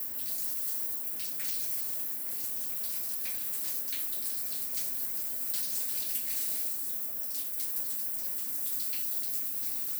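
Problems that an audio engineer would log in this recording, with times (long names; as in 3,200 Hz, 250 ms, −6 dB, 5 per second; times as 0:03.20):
0:01.76–0:03.74: clipping −29 dBFS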